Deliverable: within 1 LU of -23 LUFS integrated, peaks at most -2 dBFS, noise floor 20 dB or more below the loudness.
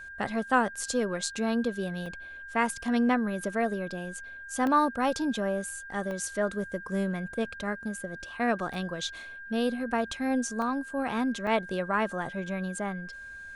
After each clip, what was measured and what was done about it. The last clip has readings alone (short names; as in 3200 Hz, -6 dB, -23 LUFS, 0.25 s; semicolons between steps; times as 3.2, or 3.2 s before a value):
dropouts 6; longest dropout 1.1 ms; steady tone 1600 Hz; tone level -41 dBFS; loudness -30.0 LUFS; peak -11.5 dBFS; loudness target -23.0 LUFS
-> interpolate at 2.06/4.67/6.11/8.74/10.62/11.47, 1.1 ms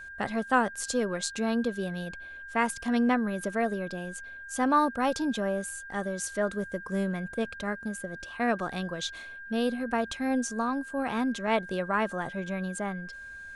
dropouts 0; steady tone 1600 Hz; tone level -41 dBFS
-> notch 1600 Hz, Q 30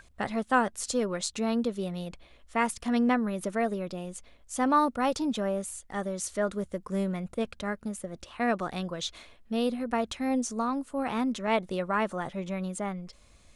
steady tone none; loudness -30.5 LUFS; peak -12.0 dBFS; loudness target -23.0 LUFS
-> gain +7.5 dB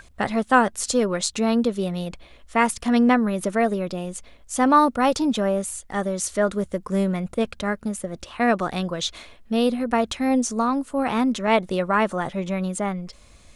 loudness -23.0 LUFS; peak -4.5 dBFS; noise floor -50 dBFS